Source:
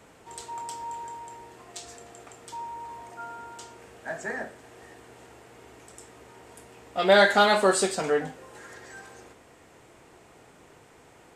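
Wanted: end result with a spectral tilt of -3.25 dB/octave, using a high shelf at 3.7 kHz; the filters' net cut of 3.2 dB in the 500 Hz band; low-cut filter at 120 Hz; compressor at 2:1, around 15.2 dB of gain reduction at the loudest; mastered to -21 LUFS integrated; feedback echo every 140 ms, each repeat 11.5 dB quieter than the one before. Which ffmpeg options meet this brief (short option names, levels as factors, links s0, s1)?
-af "highpass=120,equalizer=f=500:t=o:g=-4,highshelf=f=3700:g=-7,acompressor=threshold=0.00562:ratio=2,aecho=1:1:140|280|420:0.266|0.0718|0.0194,volume=13.3"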